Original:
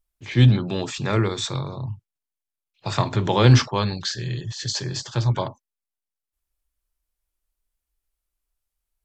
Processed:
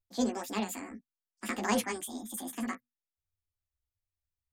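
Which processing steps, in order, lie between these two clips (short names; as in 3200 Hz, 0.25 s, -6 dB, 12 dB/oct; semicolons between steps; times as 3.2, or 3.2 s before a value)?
notches 60/120 Hz; chorus 0.86 Hz, delay 19 ms, depth 8 ms; speed mistake 7.5 ips tape played at 15 ips; gain -8.5 dB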